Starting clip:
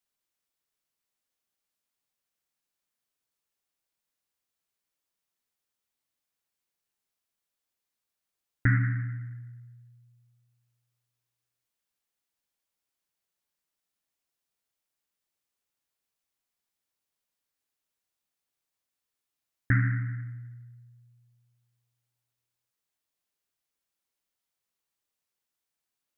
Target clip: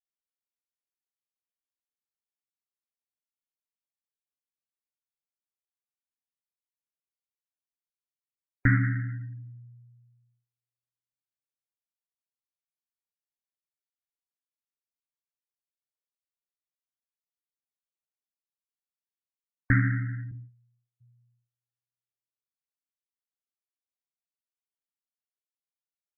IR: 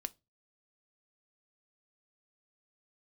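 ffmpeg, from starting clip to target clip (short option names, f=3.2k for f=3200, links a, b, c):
-filter_complex "[0:a]asettb=1/sr,asplit=3[a][b][c];[a]atrim=end=20.314[d];[b]atrim=start=20.31:end=21.01,asetpts=PTS-STARTPTS,afade=t=in:d=0.004:c=qsin,afade=t=out:st=0.696:d=0.004:c=qsin,agate=range=-16dB:threshold=-42dB:ratio=16:detection=peak[e];[c]atrim=start=21.006[f];[d][e]acrossfade=d=0.004:c1=hsin:c2=qsin[g];[g][f]acrossfade=d=0.004:c1=qsin:c2=hsin[h];[1:a]atrim=start_sample=2205[i];[h][i]afir=irnorm=-1:irlink=0,afftdn=nr=24:nf=-51,volume=4.5dB"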